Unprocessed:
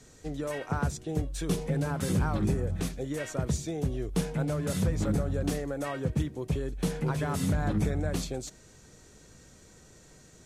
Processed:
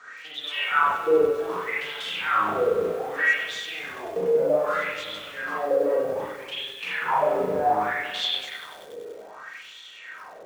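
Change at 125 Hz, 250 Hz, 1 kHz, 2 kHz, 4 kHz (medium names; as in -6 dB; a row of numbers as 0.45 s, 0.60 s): -18.0 dB, -6.5 dB, +14.0 dB, +15.5 dB, +14.0 dB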